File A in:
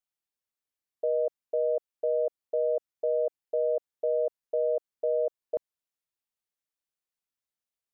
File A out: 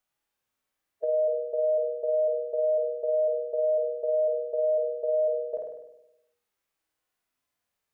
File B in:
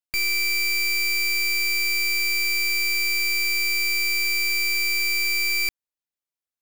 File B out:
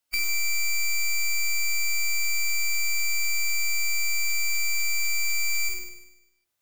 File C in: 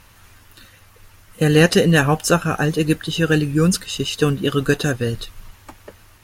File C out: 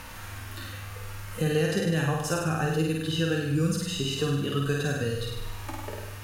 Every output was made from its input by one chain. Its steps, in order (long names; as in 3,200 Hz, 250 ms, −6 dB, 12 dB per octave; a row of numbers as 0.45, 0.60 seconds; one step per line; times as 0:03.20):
mains-hum notches 60/120/180/240/300/360/420/480/540 Hz
downward compressor 2.5 to 1, threshold −31 dBFS
flutter between parallel walls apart 8.6 metres, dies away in 0.76 s
harmonic and percussive parts rebalanced percussive −11 dB
multiband upward and downward compressor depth 40%
level +2.5 dB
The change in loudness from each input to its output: +3.0, −4.5, −10.0 LU